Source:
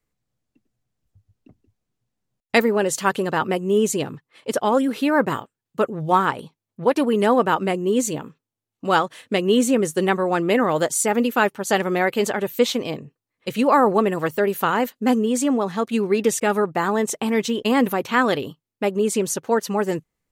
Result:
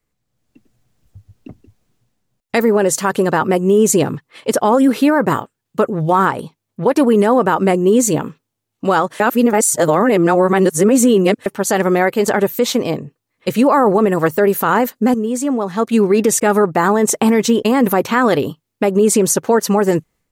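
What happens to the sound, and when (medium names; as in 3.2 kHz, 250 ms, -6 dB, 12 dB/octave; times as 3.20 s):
9.20–11.46 s: reverse
12.28–15.14 s: gain +9 dB
whole clip: dynamic bell 3.1 kHz, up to -7 dB, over -41 dBFS, Q 1.3; level rider; peak limiter -8.5 dBFS; trim +4 dB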